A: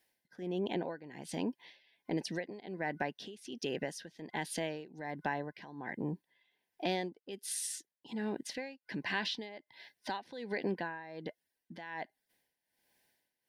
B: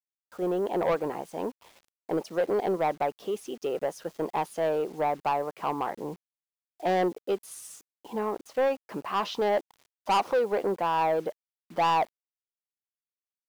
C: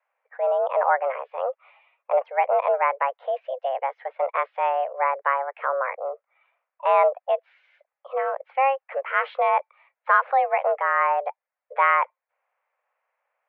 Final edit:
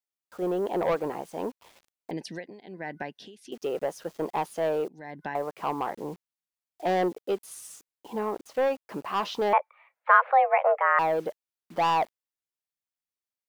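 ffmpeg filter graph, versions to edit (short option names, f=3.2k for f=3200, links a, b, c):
-filter_complex "[0:a]asplit=2[a][b];[1:a]asplit=4[c][d][e][f];[c]atrim=end=2.112[g];[a]atrim=start=2.108:end=3.522[h];[d]atrim=start=3.518:end=4.882[i];[b]atrim=start=4.878:end=5.352[j];[e]atrim=start=5.348:end=9.532[k];[2:a]atrim=start=9.528:end=10.992[l];[f]atrim=start=10.988[m];[g][h]acrossfade=d=0.004:c1=hsin:c2=hsin[n];[n][i]acrossfade=d=0.004:c1=hsin:c2=hsin[o];[o][j]acrossfade=d=0.004:c1=hsin:c2=hsin[p];[p][k]acrossfade=d=0.004:c1=hsin:c2=hsin[q];[q][l]acrossfade=d=0.004:c1=hsin:c2=hsin[r];[r][m]acrossfade=d=0.004:c1=hsin:c2=hsin"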